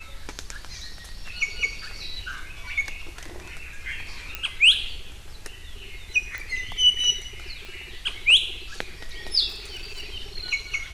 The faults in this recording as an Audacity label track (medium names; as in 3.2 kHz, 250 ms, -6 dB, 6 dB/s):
4.350000	4.350000	pop -13 dBFS
6.380000	6.380000	pop
7.650000	7.650000	pop -25 dBFS
9.480000	10.020000	clipped -31 dBFS